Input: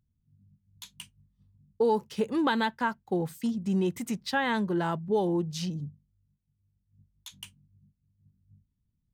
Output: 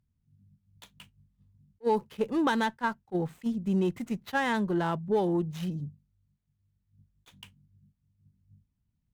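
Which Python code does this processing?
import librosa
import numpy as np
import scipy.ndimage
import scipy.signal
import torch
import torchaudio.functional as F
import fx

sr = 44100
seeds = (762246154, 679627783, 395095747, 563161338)

y = scipy.signal.medfilt(x, 9)
y = fx.cheby_harmonics(y, sr, harmonics=(6, 8), levels_db=(-30, -45), full_scale_db=-15.5)
y = fx.attack_slew(y, sr, db_per_s=590.0)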